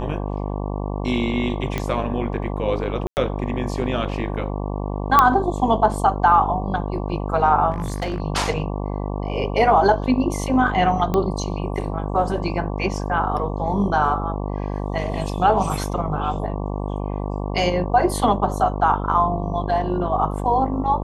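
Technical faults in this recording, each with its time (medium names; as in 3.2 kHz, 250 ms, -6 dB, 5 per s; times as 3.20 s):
buzz 50 Hz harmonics 23 -26 dBFS
1.78 s: pop -10 dBFS
3.07–3.17 s: dropout 99 ms
5.19 s: pop -1 dBFS
7.71–8.20 s: clipped -20.5 dBFS
11.14 s: pop -10 dBFS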